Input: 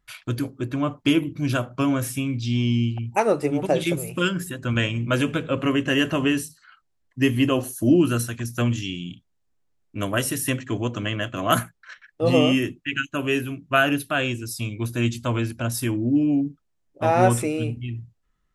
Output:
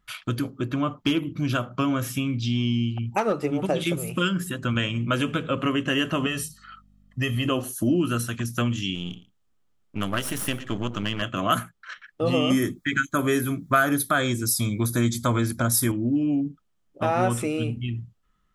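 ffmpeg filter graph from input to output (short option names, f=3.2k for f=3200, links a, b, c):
-filter_complex "[0:a]asettb=1/sr,asplit=3[a][b][c];[a]atrim=end=0.404[d];[b]atrim=start=0.4:end=3.59,asetpts=PTS-STARTPTS,afade=t=in:d=0.004:c=qsin,afade=t=out:st=3.186:d=0.004:c=qsin,equalizer=f=9.2k:w=4.8:g=-13,asoftclip=type=hard:threshold=-12dB[e];[c]atrim=start=3.586[f];[d][e]acrossfade=d=0.004:c1=hsin:c2=qsin[g];[g][f]acrossfade=d=0.004:c1=qsin:c2=hsin,asettb=1/sr,asplit=3[h][i][j];[h]atrim=end=6.264[k];[i]atrim=start=6.26:end=7.46,asetpts=PTS-STARTPTS,afade=t=in:d=0.004:c=qsin,afade=t=out:st=1.196:d=0.004:c=qsin,acompressor=threshold=-25dB:ratio=1.5:attack=3.2:release=140:knee=1:detection=peak,aecho=1:1:1.6:0.66,atrim=end_sample=52920,aeval=exprs='val(0)+0.00112*(sin(2*PI*50*n/s)+sin(2*PI*2*50*n/s)/2+sin(2*PI*3*50*n/s)/3+sin(2*PI*4*50*n/s)/4+sin(2*PI*5*50*n/s)/5)':c=same[l];[j]atrim=start=7.456[m];[k][l]acrossfade=d=0.004:c1=hsin:c2=qsin[n];[n][m]acrossfade=d=0.004:c1=qsin:c2=hsin,asettb=1/sr,asplit=3[o][p][q];[o]atrim=end=8.954[r];[p]atrim=start=8.95:end=11.22,asetpts=PTS-STARTPTS,afade=t=in:d=0.004:c=qsin,afade=t=out:st=2.266:d=0.004:c=qsin,aeval=exprs='if(lt(val(0),0),0.251*val(0),val(0))':c=same,aecho=1:1:113:0.126,atrim=end_sample=100107[s];[q]atrim=start=11.216[t];[r][s]acrossfade=d=0.004:c1=hsin:c2=qsin[u];[u][t]acrossfade=d=0.004:c1=qsin:c2=hsin,asettb=1/sr,asplit=3[v][w][x];[v]atrim=end=12.504[y];[w]atrim=start=12.5:end=15.92,asetpts=PTS-STARTPTS,afade=t=in:d=0.004:c=qsin,afade=t=out:st=3.416:d=0.004:c=qsin,asuperstop=centerf=2800:order=4:qfactor=2.8,highshelf=f=7k:g=12,acontrast=38[z];[x]atrim=start=15.916[aa];[y][z]acrossfade=d=0.004:c1=hsin:c2=qsin[ab];[ab][aa]acrossfade=d=0.004:c1=qsin:c2=hsin,equalizer=f=200:t=o:w=0.33:g=7,equalizer=f=1.25k:t=o:w=0.33:g=7,equalizer=f=3.15k:t=o:w=0.33:g=5,acompressor=threshold=-26dB:ratio=2,volume=1.5dB"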